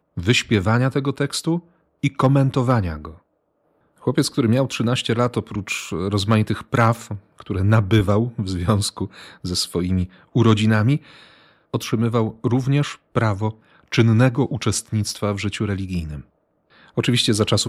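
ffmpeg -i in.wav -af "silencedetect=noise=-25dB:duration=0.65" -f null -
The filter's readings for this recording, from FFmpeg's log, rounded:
silence_start: 3.07
silence_end: 4.07 | silence_duration: 1.00
silence_start: 10.97
silence_end: 11.74 | silence_duration: 0.77
silence_start: 16.18
silence_end: 16.98 | silence_duration: 0.80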